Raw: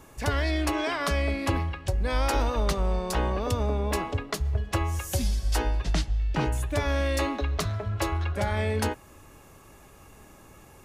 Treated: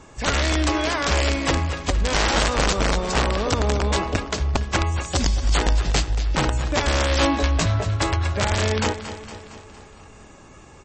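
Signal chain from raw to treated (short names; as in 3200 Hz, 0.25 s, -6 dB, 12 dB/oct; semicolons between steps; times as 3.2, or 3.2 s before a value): wrapped overs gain 18 dB; 7.19–7.84 doubler 18 ms -2.5 dB; feedback echo 0.23 s, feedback 58%, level -12 dB; gain +5.5 dB; MP3 32 kbps 24000 Hz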